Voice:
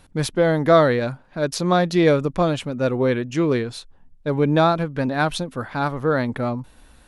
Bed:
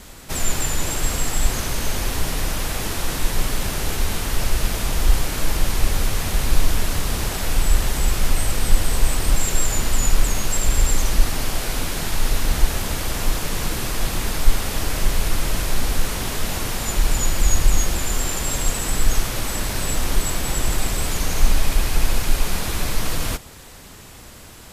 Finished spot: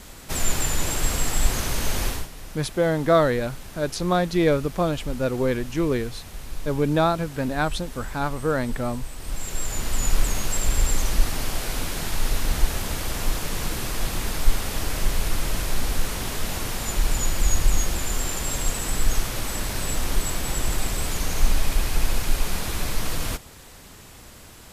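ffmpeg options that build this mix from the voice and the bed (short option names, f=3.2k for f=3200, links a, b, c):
-filter_complex "[0:a]adelay=2400,volume=-3.5dB[a];[1:a]volume=11.5dB,afade=t=out:st=2.06:d=0.22:silence=0.177828,afade=t=in:st=9.15:d=1.02:silence=0.223872[b];[a][b]amix=inputs=2:normalize=0"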